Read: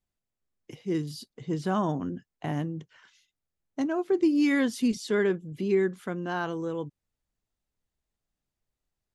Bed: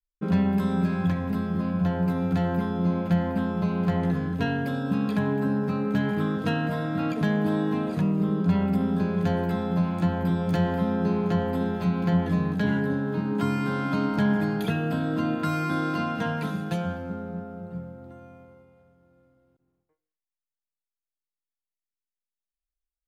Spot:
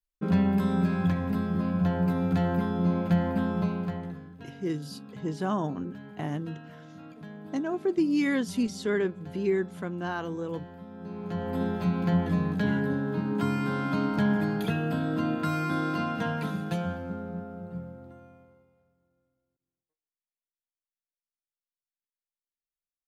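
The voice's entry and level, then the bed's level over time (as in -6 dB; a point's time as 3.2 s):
3.75 s, -2.0 dB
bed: 3.61 s -1 dB
4.36 s -19.5 dB
10.9 s -19.5 dB
11.61 s -2 dB
17.95 s -2 dB
19.6 s -18 dB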